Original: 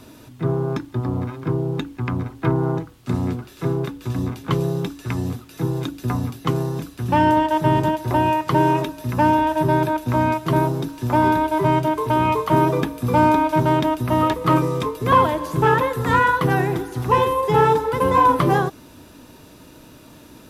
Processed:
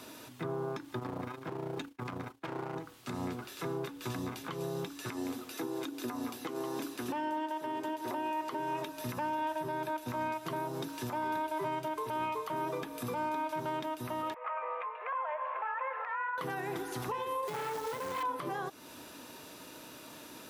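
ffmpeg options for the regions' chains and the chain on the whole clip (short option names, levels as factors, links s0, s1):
-filter_complex "[0:a]asettb=1/sr,asplit=3[s0][s1][s2];[s0]atrim=end=0.994[s3];[s1]atrim=start=0.99:end=2.76,asetpts=PTS-STARTPTS,afade=t=in:d=0.004:c=qsin,afade=t=out:st=1.766:d=0.004:c=qsin,agate=range=0.0224:threshold=0.0282:ratio=3:release=100:detection=peak,asoftclip=type=hard:threshold=0.0891,tremolo=f=28:d=0.571[s4];[s2]atrim=start=2.756[s5];[s3][s4]acrossfade=d=0.004:c1=hsin:c2=qsin[s6];[s6][s5]acrossfade=d=0.004:c1=qsin:c2=hsin,asettb=1/sr,asplit=3[s7][s8][s9];[s7]atrim=end=5.094[s10];[s8]atrim=start=5.09:end=8.6,asetpts=PTS-STARTPTS,afade=t=in:d=0.004:c=qsin,afade=t=out:st=3.506:d=0.004:c=qsin,lowshelf=f=210:t=q:w=3:g=-7,aecho=1:1:165:0.168,atrim=end_sample=154791[s11];[s9]atrim=start=8.596[s12];[s10][s11]acrossfade=d=0.004:c1=hsin:c2=qsin[s13];[s13][s12]acrossfade=d=0.004:c1=qsin:c2=hsin,asettb=1/sr,asplit=3[s14][s15][s16];[s14]atrim=end=14.344[s17];[s15]atrim=start=14.34:end=16.38,asetpts=PTS-STARTPTS,afade=t=in:d=0.004:c=qsin,afade=t=out:st=2.036:d=0.004:c=qsin,asuperpass=centerf=1200:order=12:qfactor=0.59,acompressor=threshold=0.0447:ratio=2.5:attack=3.2:release=140:knee=1:detection=peak[s18];[s16]atrim=start=16.376[s19];[s17][s18]acrossfade=d=0.004:c1=hsin:c2=qsin[s20];[s20][s19]acrossfade=d=0.004:c1=qsin:c2=hsin,asettb=1/sr,asplit=3[s21][s22][s23];[s21]atrim=end=17.474[s24];[s22]atrim=start=17.47:end=18.23,asetpts=PTS-STARTPTS,afade=t=in:d=0.004:c=qsin,afade=t=out:st=0.756:d=0.004:c=qsin,lowshelf=f=360:g=5,aeval=exprs='(tanh(5.62*val(0)+0.5)-tanh(0.5))/5.62':c=same,acrusher=bits=3:mode=log:mix=0:aa=0.000001[s25];[s23]atrim=start=18.226[s26];[s24][s25]acrossfade=d=0.004:c1=hsin:c2=qsin[s27];[s27][s26]acrossfade=d=0.004:c1=qsin:c2=hsin,highpass=f=580:p=1,acompressor=threshold=0.02:ratio=2.5,alimiter=level_in=1.5:limit=0.0631:level=0:latency=1:release=123,volume=0.668"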